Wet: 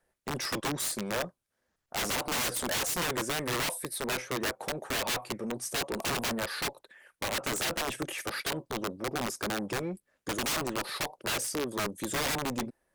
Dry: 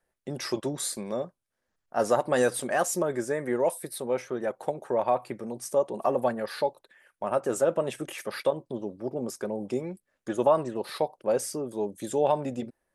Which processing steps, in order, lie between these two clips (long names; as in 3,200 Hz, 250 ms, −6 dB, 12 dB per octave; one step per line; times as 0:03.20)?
wrap-around overflow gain 25 dB
harmonic generator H 5 −22 dB, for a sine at −25 dBFS